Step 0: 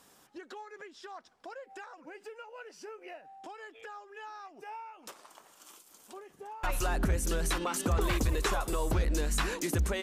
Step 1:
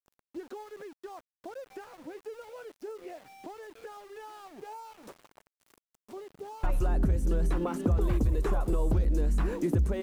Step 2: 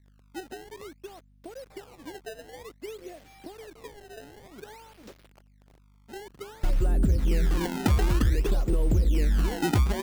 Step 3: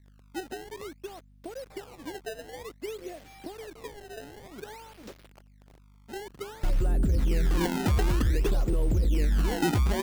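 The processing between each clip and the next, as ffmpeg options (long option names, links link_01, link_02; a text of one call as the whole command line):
ffmpeg -i in.wav -filter_complex "[0:a]tiltshelf=frequency=820:gain=10,acrossover=split=2900|7600[link_01][link_02][link_03];[link_01]acompressor=threshold=-23dB:ratio=4[link_04];[link_02]acompressor=threshold=-59dB:ratio=4[link_05];[link_03]acompressor=threshold=-54dB:ratio=4[link_06];[link_04][link_05][link_06]amix=inputs=3:normalize=0,aeval=exprs='val(0)*gte(abs(val(0)),0.00299)':channel_layout=same" out.wav
ffmpeg -i in.wav -af "aeval=exprs='val(0)+0.000891*(sin(2*PI*50*n/s)+sin(2*PI*2*50*n/s)/2+sin(2*PI*3*50*n/s)/3+sin(2*PI*4*50*n/s)/4+sin(2*PI*5*50*n/s)/5)':channel_layout=same,equalizer=frequency=1000:width_type=o:width=1.3:gain=-10,acrusher=samples=22:mix=1:aa=0.000001:lfo=1:lforange=35.2:lforate=0.54,volume=3.5dB" out.wav
ffmpeg -i in.wav -af "alimiter=limit=-21.5dB:level=0:latency=1:release=11,volume=2.5dB" out.wav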